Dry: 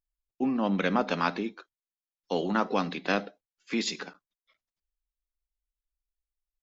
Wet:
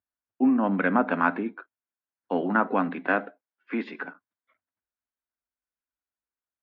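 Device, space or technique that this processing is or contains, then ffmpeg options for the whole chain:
bass cabinet: -filter_complex "[0:a]highpass=f=79:w=0.5412,highpass=f=79:w=1.3066,equalizer=f=94:t=q:w=4:g=6,equalizer=f=140:t=q:w=4:g=-8,equalizer=f=260:t=q:w=4:g=8,equalizer=f=680:t=q:w=4:g=4,equalizer=f=980:t=q:w=4:g=4,equalizer=f=1500:t=q:w=4:g=8,lowpass=f=2300:w=0.5412,lowpass=f=2300:w=1.3066,asettb=1/sr,asplit=3[s0][s1][s2];[s0]atrim=end=3.074[s3];[s1]atrim=start=3.07:end=4.05,asetpts=PTS-STARTPTS,afade=t=in:d=0.004:c=qsin,afade=t=out:st=0.976:d=0.004:c=qsin,highpass=240[s4];[s2]atrim=start=4.046[s5];[s3][s4]acrossfade=d=0.004:c1=hsin:c2=qsin[s6];[s6][s5]acrossfade=d=0.004:c1=qsin:c2=hsin"

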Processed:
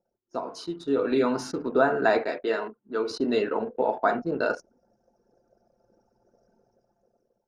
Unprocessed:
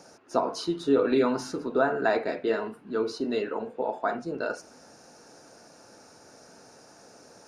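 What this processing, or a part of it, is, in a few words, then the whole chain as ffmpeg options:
voice memo with heavy noise removal: -filter_complex "[0:a]asettb=1/sr,asplit=3[s0][s1][s2];[s0]atrim=end=2.234[s3];[s1]atrim=start=2.23:end=3.11,asetpts=PTS-STARTPTS,afade=t=in:d=0.004:c=qsin,afade=t=out:st=0.876:d=0.004:c=qsin,highpass=f=470:p=1[s4];[s2]atrim=start=3.106[s5];[s3][s4]acrossfade=d=0.004:c1=hsin:c2=qsin[s6];[s6][s5]acrossfade=d=0.004:c1=qsin:c2=hsin,anlmdn=0.251,dynaudnorm=f=450:g=5:m=5.62,volume=0.447"

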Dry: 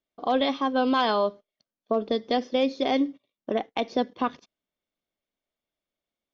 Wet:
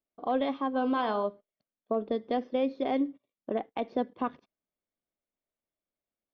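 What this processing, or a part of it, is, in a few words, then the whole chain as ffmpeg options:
phone in a pocket: -filter_complex "[0:a]lowpass=3400,highshelf=f=2500:g=-10,asplit=3[s0][s1][s2];[s0]afade=t=out:st=0.73:d=0.02[s3];[s1]bandreject=f=46.69:t=h:w=4,bandreject=f=93.38:t=h:w=4,bandreject=f=140.07:t=h:w=4,bandreject=f=186.76:t=h:w=4,bandreject=f=233.45:t=h:w=4,bandreject=f=280.14:t=h:w=4,bandreject=f=326.83:t=h:w=4,bandreject=f=373.52:t=h:w=4,bandreject=f=420.21:t=h:w=4,bandreject=f=466.9:t=h:w=4,bandreject=f=513.59:t=h:w=4,bandreject=f=560.28:t=h:w=4,bandreject=f=606.97:t=h:w=4,bandreject=f=653.66:t=h:w=4,bandreject=f=700.35:t=h:w=4,bandreject=f=747.04:t=h:w=4,bandreject=f=793.73:t=h:w=4,bandreject=f=840.42:t=h:w=4,bandreject=f=887.11:t=h:w=4,bandreject=f=933.8:t=h:w=4,bandreject=f=980.49:t=h:w=4,bandreject=f=1027.18:t=h:w=4,bandreject=f=1073.87:t=h:w=4,bandreject=f=1120.56:t=h:w=4,bandreject=f=1167.25:t=h:w=4,bandreject=f=1213.94:t=h:w=4,bandreject=f=1260.63:t=h:w=4,bandreject=f=1307.32:t=h:w=4,bandreject=f=1354.01:t=h:w=4,bandreject=f=1400.7:t=h:w=4,bandreject=f=1447.39:t=h:w=4,bandreject=f=1494.08:t=h:w=4,bandreject=f=1540.77:t=h:w=4,afade=t=in:st=0.73:d=0.02,afade=t=out:st=1.23:d=0.02[s4];[s2]afade=t=in:st=1.23:d=0.02[s5];[s3][s4][s5]amix=inputs=3:normalize=0,volume=0.631"

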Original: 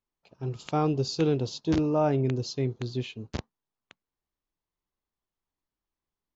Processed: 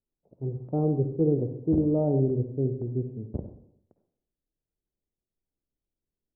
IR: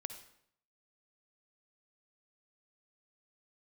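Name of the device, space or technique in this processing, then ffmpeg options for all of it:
next room: -filter_complex "[0:a]lowpass=f=570:w=0.5412,lowpass=f=570:w=1.3066[s0];[1:a]atrim=start_sample=2205[s1];[s0][s1]afir=irnorm=-1:irlink=0,volume=1.68"

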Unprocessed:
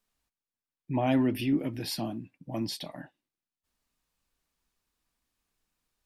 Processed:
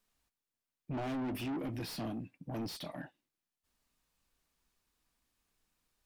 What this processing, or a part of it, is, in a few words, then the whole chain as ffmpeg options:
saturation between pre-emphasis and de-emphasis: -af "highshelf=f=2400:g=10.5,asoftclip=type=tanh:threshold=0.0168,highshelf=f=2400:g=-10.5,volume=1.12"

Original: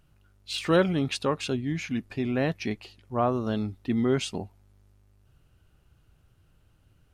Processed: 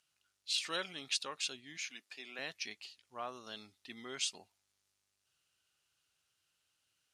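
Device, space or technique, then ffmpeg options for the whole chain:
piezo pickup straight into a mixer: -filter_complex "[0:a]asettb=1/sr,asplit=3[s0][s1][s2];[s0]atrim=end=1.774[s3];[s1]atrim=start=1.77:end=2.39,asetpts=PTS-STARTPTS,afade=t=in:d=0.004:c=qsin,afade=t=out:st=0.616:d=0.004:c=qsin,highpass=320[s4];[s2]atrim=start=2.386[s5];[s3][s4]acrossfade=d=0.004:c1=hsin:c2=qsin[s6];[s6][s5]acrossfade=d=0.004:c1=qsin:c2=hsin,lowpass=5700,aderivative,highshelf=f=4200:g=6,volume=1.26"

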